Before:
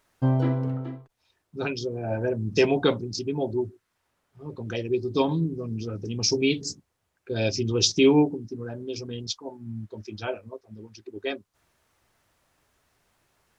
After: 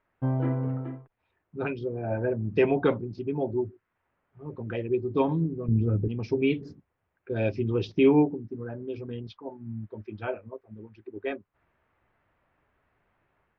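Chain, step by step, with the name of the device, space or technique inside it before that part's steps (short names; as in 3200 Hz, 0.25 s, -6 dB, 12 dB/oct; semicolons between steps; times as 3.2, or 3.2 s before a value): 5.68–6.08 tilt -3.5 dB/oct; action camera in a waterproof case (LPF 2400 Hz 24 dB/oct; AGC gain up to 4.5 dB; gain -5.5 dB; AAC 96 kbps 48000 Hz)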